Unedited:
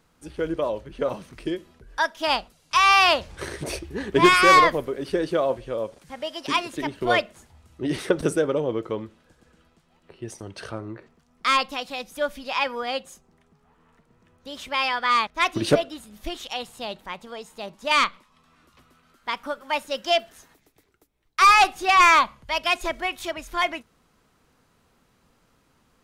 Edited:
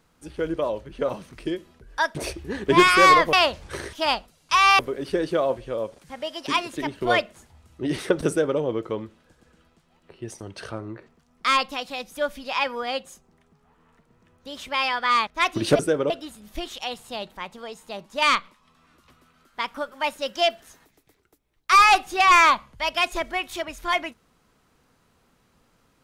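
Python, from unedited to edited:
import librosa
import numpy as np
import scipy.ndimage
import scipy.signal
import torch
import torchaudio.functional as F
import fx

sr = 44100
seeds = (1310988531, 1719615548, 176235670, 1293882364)

y = fx.edit(x, sr, fx.swap(start_s=2.15, length_s=0.86, other_s=3.61, other_length_s=1.18),
    fx.duplicate(start_s=8.28, length_s=0.31, to_s=15.79), tone=tone)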